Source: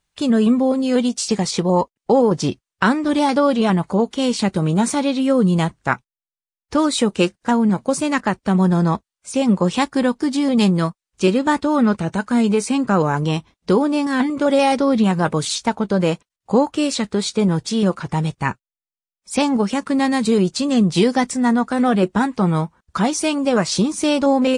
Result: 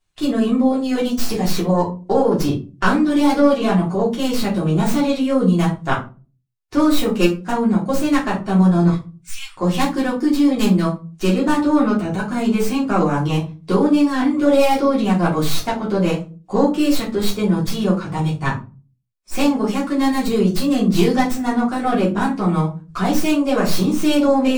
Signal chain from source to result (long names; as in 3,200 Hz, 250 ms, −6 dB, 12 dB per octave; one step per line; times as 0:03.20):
stylus tracing distortion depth 0.11 ms
0:08.88–0:09.57: inverse Chebyshev band-stop filter 100–550 Hz, stop band 60 dB
rectangular room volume 140 cubic metres, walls furnished, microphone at 3.2 metres
level −8 dB